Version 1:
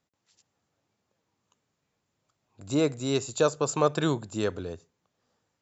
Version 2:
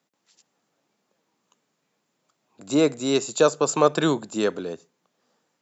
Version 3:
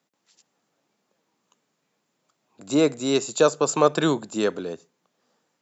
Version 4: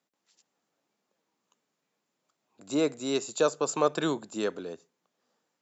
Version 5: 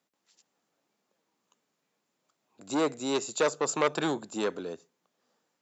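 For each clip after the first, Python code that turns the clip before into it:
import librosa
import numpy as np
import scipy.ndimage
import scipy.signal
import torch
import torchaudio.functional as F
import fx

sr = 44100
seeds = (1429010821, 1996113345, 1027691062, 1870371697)

y1 = scipy.signal.sosfilt(scipy.signal.butter(4, 170.0, 'highpass', fs=sr, output='sos'), x)
y1 = F.gain(torch.from_numpy(y1), 5.5).numpy()
y2 = y1
y3 = fx.peak_eq(y2, sr, hz=130.0, db=-3.5, octaves=1.2)
y3 = F.gain(torch.from_numpy(y3), -6.5).numpy()
y4 = fx.transformer_sat(y3, sr, knee_hz=1400.0)
y4 = F.gain(torch.from_numpy(y4), 1.5).numpy()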